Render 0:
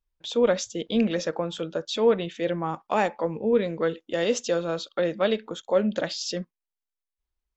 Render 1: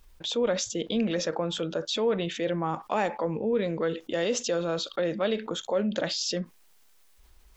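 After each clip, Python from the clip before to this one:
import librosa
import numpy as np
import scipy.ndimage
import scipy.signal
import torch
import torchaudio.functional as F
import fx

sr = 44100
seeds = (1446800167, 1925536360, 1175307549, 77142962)

y = fx.env_flatten(x, sr, amount_pct=50)
y = y * librosa.db_to_amplitude(-6.5)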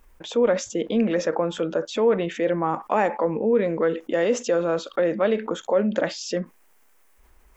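y = fx.graphic_eq(x, sr, hz=(125, 250, 500, 1000, 2000, 4000), db=(-4, 5, 4, 4, 5, -9))
y = y * librosa.db_to_amplitude(1.0)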